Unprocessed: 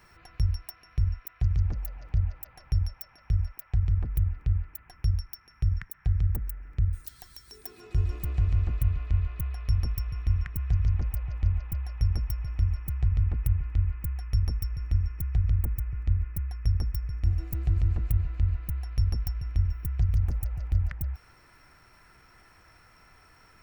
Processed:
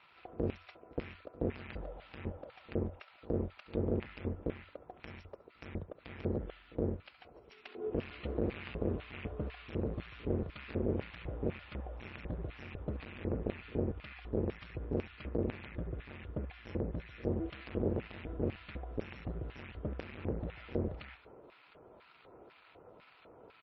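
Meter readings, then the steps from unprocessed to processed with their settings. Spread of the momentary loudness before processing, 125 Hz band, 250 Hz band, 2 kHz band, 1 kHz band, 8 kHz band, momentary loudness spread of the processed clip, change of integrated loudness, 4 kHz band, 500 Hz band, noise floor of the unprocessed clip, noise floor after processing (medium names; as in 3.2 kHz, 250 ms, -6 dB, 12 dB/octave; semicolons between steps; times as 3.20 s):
8 LU, -14.5 dB, +7.0 dB, +1.5 dB, +1.5 dB, no reading, 19 LU, -10.0 dB, -5.0 dB, +15.5 dB, -58 dBFS, -62 dBFS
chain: median filter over 25 samples; low-pass 5 kHz 24 dB/octave; de-hum 353.9 Hz, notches 5; on a send: feedback delay 68 ms, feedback 20%, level -14 dB; on the sum: hard clipper -28.5 dBFS, distortion -6 dB; LFO band-pass square 2 Hz 470–2500 Hz; pre-echo 68 ms -21 dB; trim +16 dB; MP3 24 kbps 22.05 kHz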